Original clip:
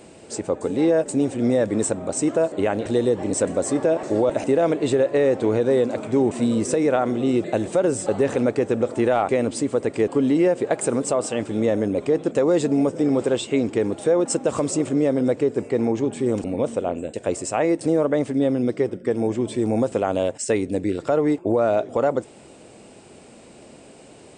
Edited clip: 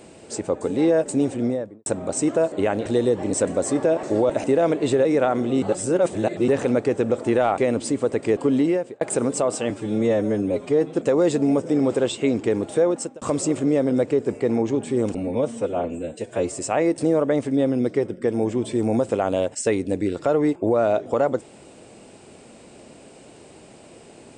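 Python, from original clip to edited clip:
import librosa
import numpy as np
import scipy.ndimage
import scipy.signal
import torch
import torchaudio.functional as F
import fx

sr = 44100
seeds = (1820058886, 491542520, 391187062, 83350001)

y = fx.studio_fade_out(x, sr, start_s=1.26, length_s=0.6)
y = fx.edit(y, sr, fx.cut(start_s=5.05, length_s=1.71),
    fx.reverse_span(start_s=7.33, length_s=0.86),
    fx.fade_out_span(start_s=10.31, length_s=0.41),
    fx.stretch_span(start_s=11.41, length_s=0.83, factor=1.5),
    fx.fade_out_span(start_s=14.13, length_s=0.38),
    fx.stretch_span(start_s=16.47, length_s=0.93, factor=1.5), tone=tone)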